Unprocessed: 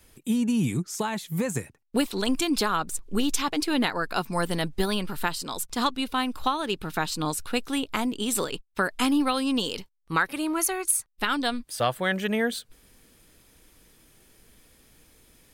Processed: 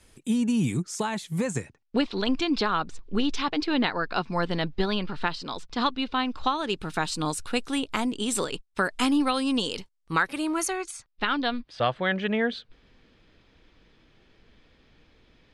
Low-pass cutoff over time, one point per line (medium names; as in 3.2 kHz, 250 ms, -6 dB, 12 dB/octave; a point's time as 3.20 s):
low-pass 24 dB/octave
1.40 s 10 kHz
2.04 s 4.8 kHz
6.20 s 4.8 kHz
6.90 s 9.8 kHz
10.59 s 9.8 kHz
11.25 s 4.2 kHz